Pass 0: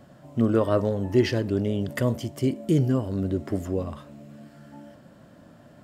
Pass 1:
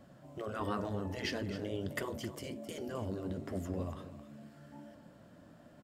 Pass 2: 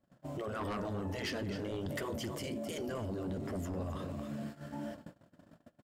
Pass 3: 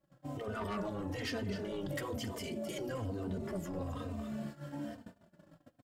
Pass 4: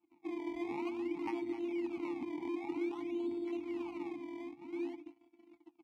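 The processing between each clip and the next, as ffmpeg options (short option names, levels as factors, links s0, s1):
-af "afftfilt=real='re*lt(hypot(re,im),0.316)':imag='im*lt(hypot(re,im),0.316)':win_size=1024:overlap=0.75,flanger=delay=3.4:depth=8.5:regen=-66:speed=1.4:shape=sinusoidal,aecho=1:1:263:0.224,volume=0.75"
-filter_complex "[0:a]asplit=2[s0][s1];[s1]aeval=exprs='0.0891*sin(PI/2*3.16*val(0)/0.0891)':c=same,volume=0.562[s2];[s0][s2]amix=inputs=2:normalize=0,agate=range=0.0224:threshold=0.00794:ratio=16:detection=peak,alimiter=level_in=2.51:limit=0.0631:level=0:latency=1:release=50,volume=0.398"
-filter_complex "[0:a]asplit=2[s0][s1];[s1]adelay=3.1,afreqshift=-1.1[s2];[s0][s2]amix=inputs=2:normalize=1,volume=1.33"
-filter_complex "[0:a]afftfilt=real='hypot(re,im)*cos(PI*b)':imag='0':win_size=512:overlap=0.75,acrusher=samples=22:mix=1:aa=0.000001:lfo=1:lforange=22:lforate=0.52,asplit=3[s0][s1][s2];[s0]bandpass=f=300:t=q:w=8,volume=1[s3];[s1]bandpass=f=870:t=q:w=8,volume=0.501[s4];[s2]bandpass=f=2240:t=q:w=8,volume=0.355[s5];[s3][s4][s5]amix=inputs=3:normalize=0,volume=5.62"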